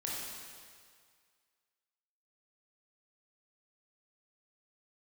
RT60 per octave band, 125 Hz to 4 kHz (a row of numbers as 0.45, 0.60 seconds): 1.9, 1.7, 1.9, 2.0, 2.0, 1.9 seconds